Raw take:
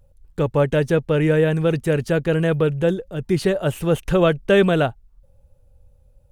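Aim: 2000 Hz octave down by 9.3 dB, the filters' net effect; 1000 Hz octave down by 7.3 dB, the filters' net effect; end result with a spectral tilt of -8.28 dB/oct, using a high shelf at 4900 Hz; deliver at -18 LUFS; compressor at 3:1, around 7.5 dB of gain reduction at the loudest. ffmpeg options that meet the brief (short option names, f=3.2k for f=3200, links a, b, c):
-af "equalizer=f=1k:t=o:g=-8.5,equalizer=f=2k:t=o:g=-8.5,highshelf=f=4.9k:g=-6.5,acompressor=threshold=-24dB:ratio=3,volume=9.5dB"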